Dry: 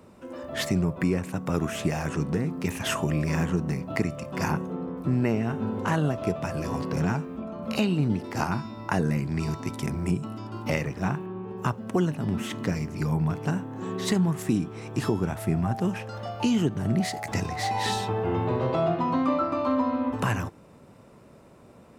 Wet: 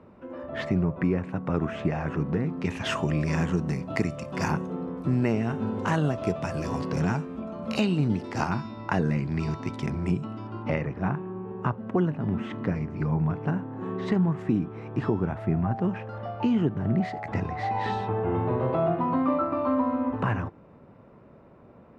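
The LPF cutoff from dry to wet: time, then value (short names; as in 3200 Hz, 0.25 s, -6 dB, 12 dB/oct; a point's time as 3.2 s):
2.26 s 2100 Hz
2.69 s 4100 Hz
3.63 s 8100 Hz
8 s 8100 Hz
8.9 s 4200 Hz
10.14 s 4200 Hz
10.78 s 1900 Hz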